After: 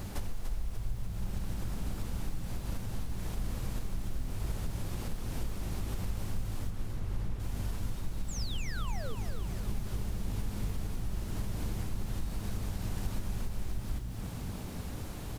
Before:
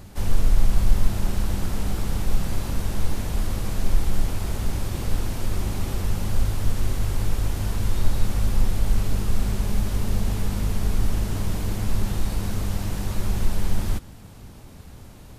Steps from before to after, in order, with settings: 8.28–9.15 s: painted sound fall 400–8100 Hz -29 dBFS; compression 8:1, threshold -35 dBFS, peak gain reduction 25 dB; bit crusher 11-bit; 6.70–7.40 s: treble shelf 4.2 kHz -11.5 dB; on a send: frequency-shifting echo 293 ms, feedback 55%, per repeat -64 Hz, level -7 dB; on the sum: trim +3 dB

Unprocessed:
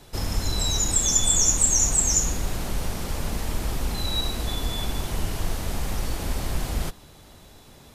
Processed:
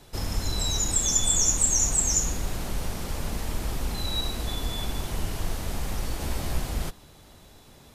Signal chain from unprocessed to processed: 6.19–6.60 s: doubling 14 ms -5 dB; trim -2.5 dB

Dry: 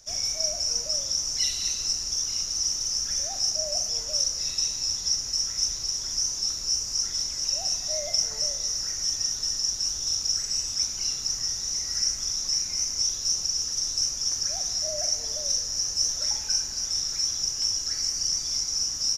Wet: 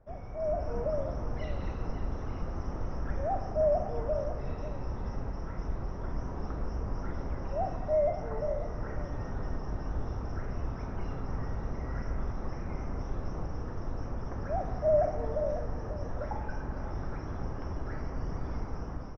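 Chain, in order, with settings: in parallel at -4 dB: saturation -20 dBFS, distortion -17 dB; on the sum: level rider gain up to 11.5 dB; Bessel low-pass 860 Hz, order 4; delay 545 ms -12 dB

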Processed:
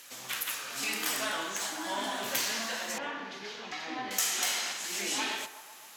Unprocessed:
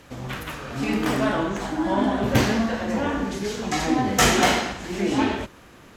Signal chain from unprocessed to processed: high-pass 110 Hz 24 dB/octave; differentiator; compression 5:1, threshold -36 dBFS, peak gain reduction 14.5 dB; sine folder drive 5 dB, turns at -19 dBFS; 2.98–4.11 s: distance through air 290 m; band-passed feedback delay 127 ms, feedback 72%, band-pass 890 Hz, level -12 dB

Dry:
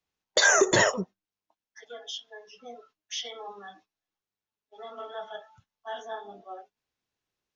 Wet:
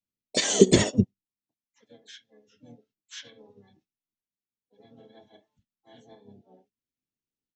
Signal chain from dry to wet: FFT filter 150 Hz 0 dB, 220 Hz +12 dB, 680 Hz -9 dB, 1.3 kHz -28 dB, 2 kHz -7 dB, 3.4 kHz -4 dB, 9 kHz -1 dB; harmony voices -12 st -5 dB, -7 st -10 dB, +3 st -7 dB; upward expansion 1.5:1, over -45 dBFS; trim +4 dB

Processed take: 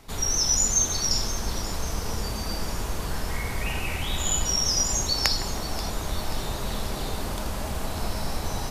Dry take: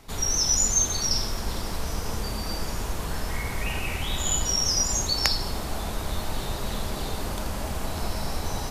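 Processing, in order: two-band feedback delay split 2.3 kHz, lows 160 ms, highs 533 ms, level -14.5 dB

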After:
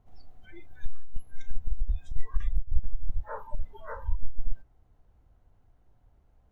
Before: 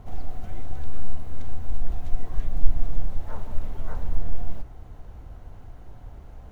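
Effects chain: spectral noise reduction 25 dB; compressor with a negative ratio -17 dBFS, ratio -0.5

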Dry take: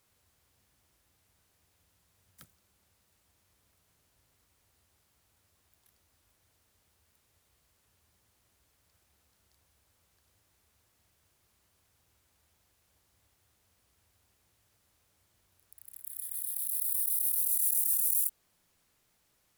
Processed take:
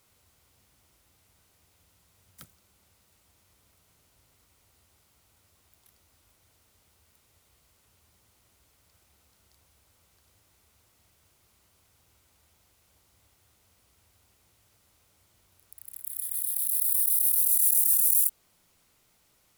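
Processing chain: band-stop 1.7 kHz, Q 13; trim +6 dB

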